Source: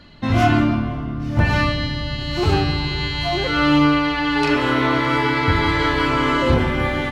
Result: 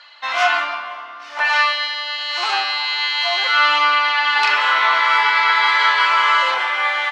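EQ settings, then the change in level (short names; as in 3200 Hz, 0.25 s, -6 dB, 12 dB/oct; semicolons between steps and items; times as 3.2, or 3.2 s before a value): HPF 860 Hz 24 dB/oct; LPF 6100 Hz 12 dB/oct; +7.0 dB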